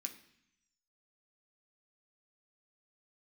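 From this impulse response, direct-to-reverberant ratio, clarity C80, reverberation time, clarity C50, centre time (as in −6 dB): 2.5 dB, 14.5 dB, 0.70 s, 11.5 dB, 12 ms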